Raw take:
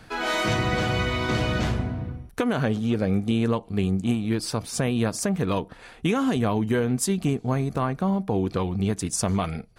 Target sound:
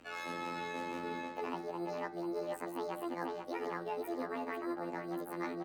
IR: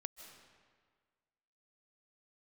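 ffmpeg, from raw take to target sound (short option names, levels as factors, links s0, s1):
-filter_complex "[0:a]asetrate=76440,aresample=44100,afftfilt=real='hypot(re,im)*cos(PI*b)':imag='0':win_size=2048:overlap=0.75,acrossover=split=430|2700[s0][s1][s2];[s0]acrusher=samples=10:mix=1:aa=0.000001[s3];[s3][s1][s2]amix=inputs=3:normalize=0,asplit=2[s4][s5];[s5]adelay=491,lowpass=f=4700:p=1,volume=0.447,asplit=2[s6][s7];[s7]adelay=491,lowpass=f=4700:p=1,volume=0.42,asplit=2[s8][s9];[s9]adelay=491,lowpass=f=4700:p=1,volume=0.42,asplit=2[s10][s11];[s11]adelay=491,lowpass=f=4700:p=1,volume=0.42,asplit=2[s12][s13];[s13]adelay=491,lowpass=f=4700:p=1,volume=0.42[s14];[s4][s6][s8][s10][s12][s14]amix=inputs=6:normalize=0,areverse,acompressor=threshold=0.0126:ratio=12,areverse,aeval=exprs='val(0)+0.00178*(sin(2*PI*60*n/s)+sin(2*PI*2*60*n/s)/2+sin(2*PI*3*60*n/s)/3+sin(2*PI*4*60*n/s)/4+sin(2*PI*5*60*n/s)/5)':c=same,acrossover=split=220 2300:gain=0.0631 1 0.251[s15][s16][s17];[s15][s16][s17]amix=inputs=3:normalize=0,bandreject=f=70.28:t=h:w=4,bandreject=f=140.56:t=h:w=4,bandreject=f=210.84:t=h:w=4,bandreject=f=281.12:t=h:w=4,bandreject=f=351.4:t=h:w=4,bandreject=f=421.68:t=h:w=4,bandreject=f=491.96:t=h:w=4,bandreject=f=562.24:t=h:w=4,bandreject=f=632.52:t=h:w=4,bandreject=f=702.8:t=h:w=4,bandreject=f=773.08:t=h:w=4,bandreject=f=843.36:t=h:w=4,bandreject=f=913.64:t=h:w=4,bandreject=f=983.92:t=h:w=4,bandreject=f=1054.2:t=h:w=4,bandreject=f=1124.48:t=h:w=4,bandreject=f=1194.76:t=h:w=4,bandreject=f=1265.04:t=h:w=4,bandreject=f=1335.32:t=h:w=4,bandreject=f=1405.6:t=h:w=4,bandreject=f=1475.88:t=h:w=4,bandreject=f=1546.16:t=h:w=4,bandreject=f=1616.44:t=h:w=4,bandreject=f=1686.72:t=h:w=4,bandreject=f=1757:t=h:w=4,bandreject=f=1827.28:t=h:w=4,bandreject=f=1897.56:t=h:w=4,bandreject=f=1967.84:t=h:w=4,bandreject=f=2038.12:t=h:w=4,bandreject=f=2108.4:t=h:w=4,volume=1.68"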